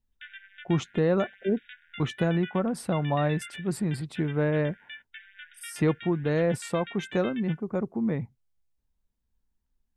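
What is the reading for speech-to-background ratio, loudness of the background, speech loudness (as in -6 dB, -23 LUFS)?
15.5 dB, -44.0 LUFS, -28.5 LUFS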